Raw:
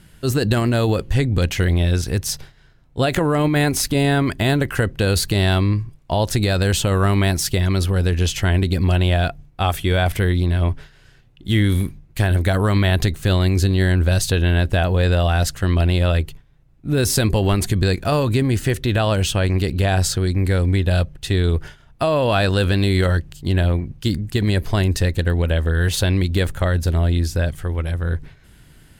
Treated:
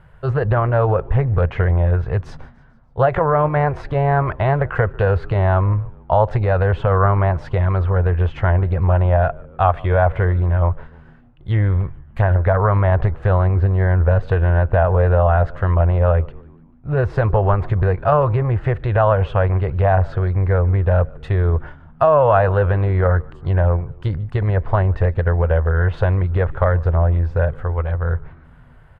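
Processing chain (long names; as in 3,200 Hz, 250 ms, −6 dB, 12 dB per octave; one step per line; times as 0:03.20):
treble cut that deepens with the level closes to 1,700 Hz, closed at −12.5 dBFS
drawn EQ curve 140 Hz 0 dB, 250 Hz −18 dB, 500 Hz +3 dB, 1,100 Hz +6 dB, 5,600 Hz −25 dB
echo with shifted repeats 147 ms, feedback 55%, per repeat −82 Hz, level −23.5 dB
highs frequency-modulated by the lows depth 0.21 ms
level +2 dB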